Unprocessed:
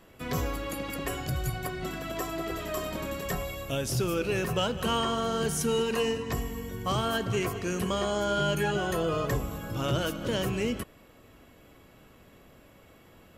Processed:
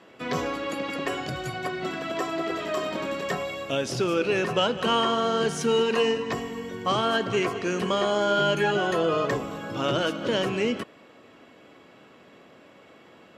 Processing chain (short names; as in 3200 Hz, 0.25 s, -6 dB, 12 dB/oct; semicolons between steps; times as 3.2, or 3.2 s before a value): BPF 220–5000 Hz; gain +5.5 dB